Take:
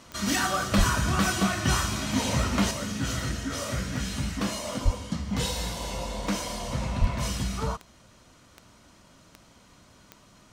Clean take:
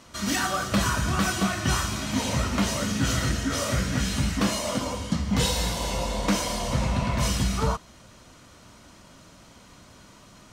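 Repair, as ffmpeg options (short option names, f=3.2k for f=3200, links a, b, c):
-filter_complex "[0:a]adeclick=t=4,asplit=3[a][b][c];[a]afade=t=out:st=0.77:d=0.02[d];[b]highpass=f=140:w=0.5412,highpass=f=140:w=1.3066,afade=t=in:st=0.77:d=0.02,afade=t=out:st=0.89:d=0.02[e];[c]afade=t=in:st=0.89:d=0.02[f];[d][e][f]amix=inputs=3:normalize=0,asplit=3[g][h][i];[g]afade=t=out:st=4.84:d=0.02[j];[h]highpass=f=140:w=0.5412,highpass=f=140:w=1.3066,afade=t=in:st=4.84:d=0.02,afade=t=out:st=4.96:d=0.02[k];[i]afade=t=in:st=4.96:d=0.02[l];[j][k][l]amix=inputs=3:normalize=0,asplit=3[m][n][o];[m]afade=t=out:st=7:d=0.02[p];[n]highpass=f=140:w=0.5412,highpass=f=140:w=1.3066,afade=t=in:st=7:d=0.02,afade=t=out:st=7.12:d=0.02[q];[o]afade=t=in:st=7.12:d=0.02[r];[p][q][r]amix=inputs=3:normalize=0,asetnsamples=n=441:p=0,asendcmd='2.71 volume volume 5dB',volume=0dB"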